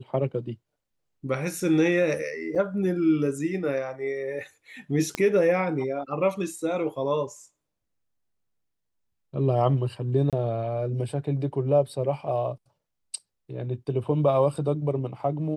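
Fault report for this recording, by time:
0:02.55–0:02.56: drop-out 6.1 ms
0:05.15: click −13 dBFS
0:10.30–0:10.33: drop-out 27 ms

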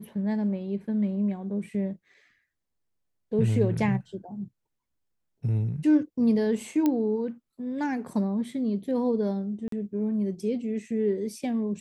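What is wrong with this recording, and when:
0:06.86: click −13 dBFS
0:09.68–0:09.72: drop-out 43 ms

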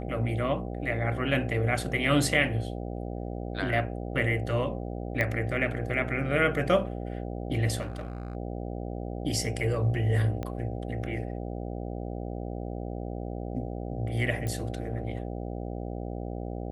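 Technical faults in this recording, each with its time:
mains buzz 60 Hz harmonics 13 −35 dBFS
0:05.21: click −14 dBFS
0:07.81–0:08.35: clipping −31 dBFS
0:10.43: click −21 dBFS
0:14.47: click −21 dBFS

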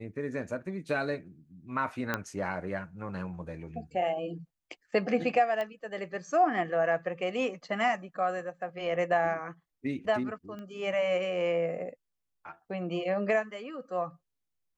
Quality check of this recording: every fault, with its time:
0:02.14: click −15 dBFS
0:05.61: click −22 dBFS
0:10.59: click −31 dBFS

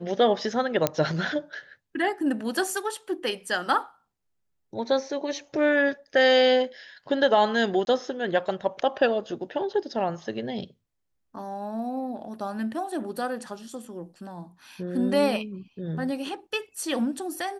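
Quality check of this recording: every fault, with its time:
0:00.87: click −6 dBFS
0:07.85–0:07.87: drop-out 21 ms

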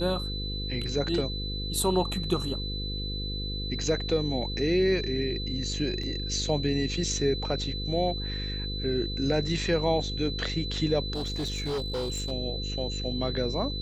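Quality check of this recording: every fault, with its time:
mains buzz 50 Hz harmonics 10 −34 dBFS
whistle 4,000 Hz −35 dBFS
0:06.03: drop-out 4.2 ms
0:11.13–0:12.32: clipping −27 dBFS

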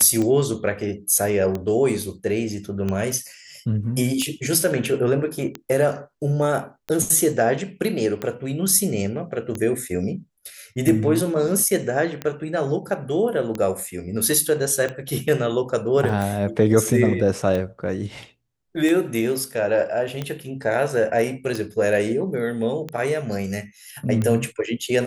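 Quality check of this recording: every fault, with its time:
scratch tick 45 rpm −14 dBFS
0:16.09: drop-out 4 ms

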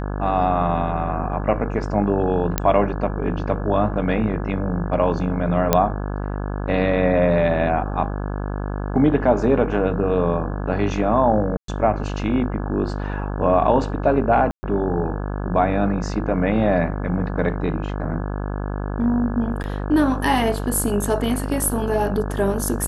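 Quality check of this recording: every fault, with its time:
mains buzz 50 Hz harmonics 34 −26 dBFS
0:02.58: click −3 dBFS
0:05.73: click −1 dBFS
0:11.57–0:11.68: drop-out 113 ms
0:14.51–0:14.63: drop-out 120 ms
0:19.63–0:19.64: drop-out 9.9 ms

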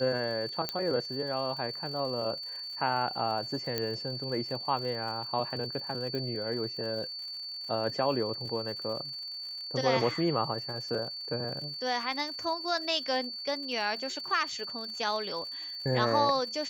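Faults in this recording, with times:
surface crackle 120 per second −41 dBFS
whistle 4,500 Hz −37 dBFS
0:00.69: click −15 dBFS
0:03.78: click −15 dBFS
0:06.15: click −24 dBFS

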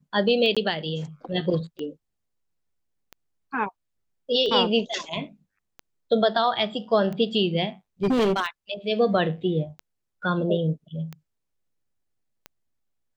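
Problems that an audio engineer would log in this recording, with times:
scratch tick 45 rpm −22 dBFS
0:00.55–0:00.57: drop-out 16 ms
0:08.03–0:08.47: clipping −18 dBFS

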